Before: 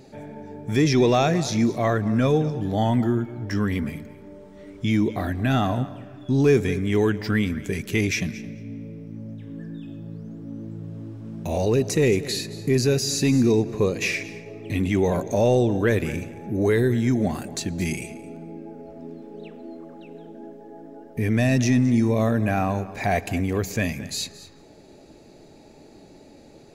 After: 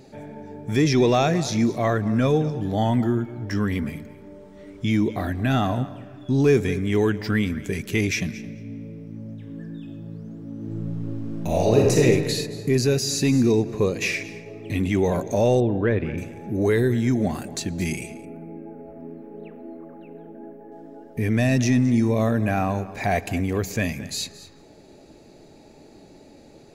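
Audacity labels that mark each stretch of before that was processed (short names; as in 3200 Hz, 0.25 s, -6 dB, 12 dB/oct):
10.570000	12.030000	reverb throw, RT60 1.5 s, DRR -2 dB
15.600000	16.180000	air absorption 360 m
18.250000	20.720000	band shelf 5200 Hz -16 dB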